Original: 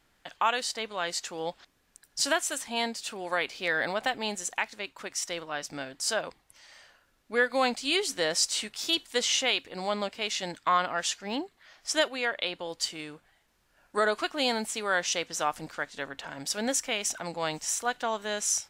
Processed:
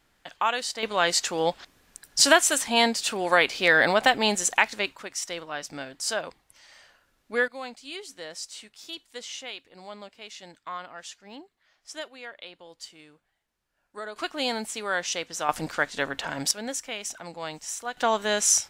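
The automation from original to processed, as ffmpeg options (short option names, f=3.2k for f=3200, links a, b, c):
-af "asetnsamples=n=441:p=0,asendcmd='0.83 volume volume 9dB;4.96 volume volume 0.5dB;7.48 volume volume -11.5dB;14.16 volume volume -0.5dB;15.49 volume volume 8dB;16.51 volume volume -4dB;17.97 volume volume 7dB',volume=1dB"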